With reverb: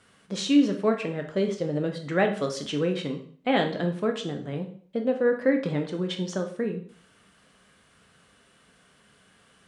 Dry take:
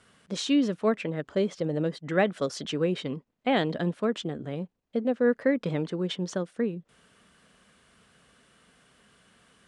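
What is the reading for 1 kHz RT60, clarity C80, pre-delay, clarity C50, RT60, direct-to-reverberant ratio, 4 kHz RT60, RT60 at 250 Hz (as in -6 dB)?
0.50 s, 13.5 dB, 5 ms, 9.5 dB, 0.50 s, 3.5 dB, 0.45 s, 0.50 s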